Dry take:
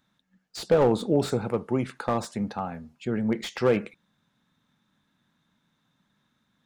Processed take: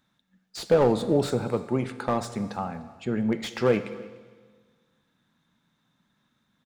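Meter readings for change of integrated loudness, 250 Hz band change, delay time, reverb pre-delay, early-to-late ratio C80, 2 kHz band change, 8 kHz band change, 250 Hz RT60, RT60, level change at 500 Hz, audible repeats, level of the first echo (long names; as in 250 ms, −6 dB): +0.5 dB, 0.0 dB, 297 ms, 11 ms, 13.5 dB, +0.5 dB, +0.5 dB, 1.6 s, 1.5 s, +0.5 dB, 1, −22.5 dB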